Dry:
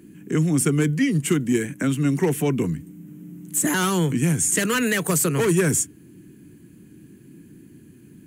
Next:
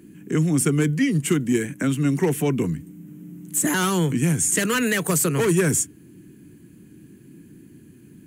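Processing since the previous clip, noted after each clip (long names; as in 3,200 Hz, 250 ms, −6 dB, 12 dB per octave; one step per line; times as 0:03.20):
no processing that can be heard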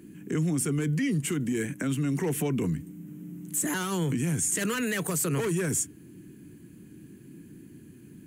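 brickwall limiter −19 dBFS, peak gain reduction 10 dB
level −1.5 dB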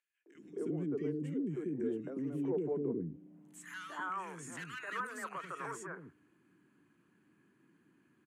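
three-band delay without the direct sound highs, mids, lows 260/350 ms, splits 370/1,700 Hz
band-pass filter sweep 410 Hz → 1,200 Hz, 0:03.06–0:03.70
level +1 dB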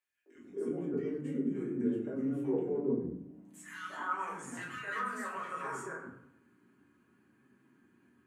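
convolution reverb RT60 0.80 s, pre-delay 6 ms, DRR −5.5 dB
level −4 dB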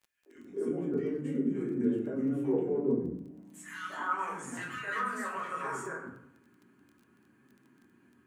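surface crackle 14 per second −52 dBFS
level +3 dB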